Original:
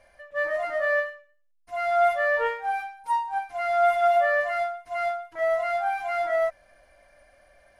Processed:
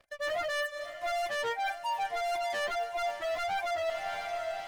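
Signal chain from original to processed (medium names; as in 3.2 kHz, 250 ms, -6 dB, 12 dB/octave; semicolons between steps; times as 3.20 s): waveshaping leveller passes 5; time stretch by phase-locked vocoder 0.6×; reverb removal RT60 1.8 s; echo that smears into a reverb 639 ms, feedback 50%, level -14.5 dB; reverse; compression 6:1, threshold -28 dBFS, peak gain reduction 15 dB; reverse; trim -3 dB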